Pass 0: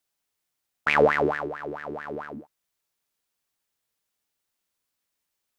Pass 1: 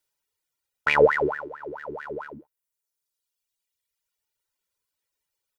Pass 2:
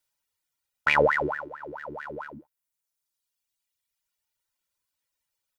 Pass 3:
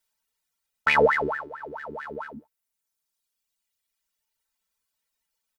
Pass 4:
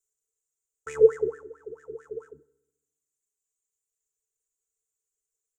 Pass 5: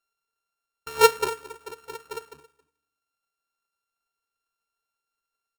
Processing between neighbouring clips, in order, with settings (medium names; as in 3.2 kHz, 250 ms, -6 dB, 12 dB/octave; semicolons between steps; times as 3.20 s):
reverb removal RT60 1.8 s; comb 2.1 ms, depth 48%
peaking EQ 420 Hz -10 dB 0.34 oct
comb 4.5 ms, depth 72%
FFT filter 140 Hz 0 dB, 220 Hz -21 dB, 440 Hz +14 dB, 630 Hz -24 dB, 930 Hz -20 dB, 1.3 kHz -9 dB, 2.2 kHz -18 dB, 4.5 kHz -20 dB, 7 kHz +14 dB, 11 kHz -4 dB; on a send at -21 dB: reverberation RT60 0.95 s, pre-delay 4 ms; on the sum: trim -7 dB
sorted samples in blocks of 32 samples; delay 272 ms -20.5 dB